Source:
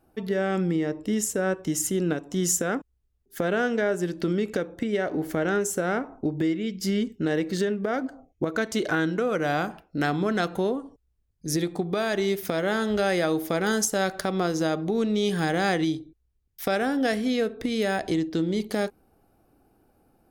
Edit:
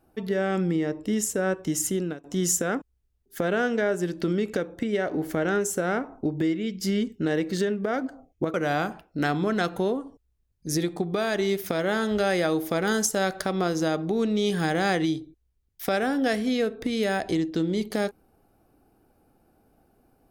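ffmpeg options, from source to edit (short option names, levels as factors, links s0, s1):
-filter_complex "[0:a]asplit=3[s0][s1][s2];[s0]atrim=end=2.24,asetpts=PTS-STARTPTS,afade=t=out:st=1.92:d=0.32:silence=0.105925[s3];[s1]atrim=start=2.24:end=8.542,asetpts=PTS-STARTPTS,afade=t=in:d=0.004:c=hsin:silence=0.105925[s4];[s2]atrim=start=9.328[s5];[s3][s4]concat=n=2:v=0:a=1[s6];[s6][s5]acrossfade=d=0.004:c1=hsin:c2=hsin"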